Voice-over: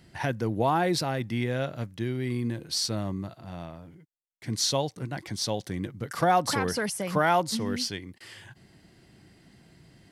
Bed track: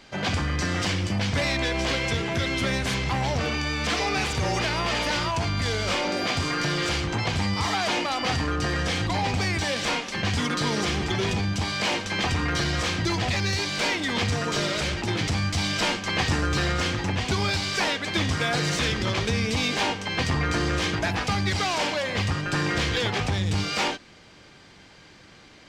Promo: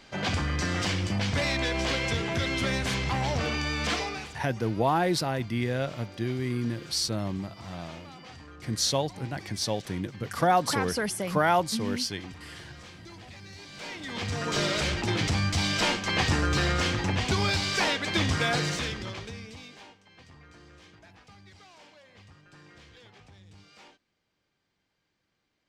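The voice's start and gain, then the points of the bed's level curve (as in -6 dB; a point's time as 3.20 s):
4.20 s, 0.0 dB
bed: 3.93 s -2.5 dB
4.46 s -21.5 dB
13.49 s -21.5 dB
14.60 s -1 dB
18.52 s -1 dB
20.02 s -28 dB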